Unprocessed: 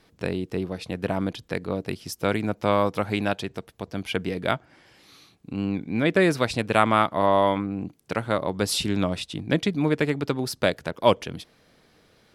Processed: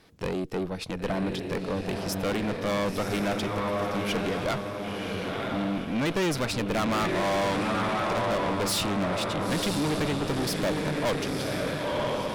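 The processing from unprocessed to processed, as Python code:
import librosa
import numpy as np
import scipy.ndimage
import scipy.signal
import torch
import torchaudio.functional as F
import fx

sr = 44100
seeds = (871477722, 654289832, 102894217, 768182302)

y = fx.echo_diffused(x, sr, ms=993, feedback_pct=45, wet_db=-6)
y = fx.tube_stage(y, sr, drive_db=28.0, bias=0.6)
y = F.gain(torch.from_numpy(y), 4.5).numpy()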